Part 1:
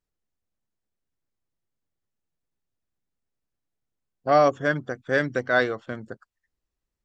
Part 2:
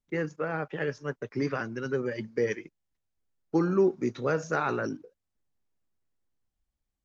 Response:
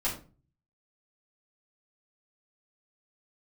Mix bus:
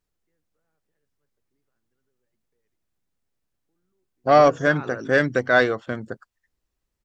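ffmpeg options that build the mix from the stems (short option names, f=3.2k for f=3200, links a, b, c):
-filter_complex "[0:a]acontrast=74,volume=-2dB,asplit=2[a][b];[1:a]alimiter=level_in=1.5dB:limit=-24dB:level=0:latency=1:release=342,volume=-1.5dB,adelay=150,volume=1dB[c];[b]apad=whole_len=317378[d];[c][d]sidechaingate=range=-45dB:threshold=-41dB:ratio=16:detection=peak[e];[a][e]amix=inputs=2:normalize=0"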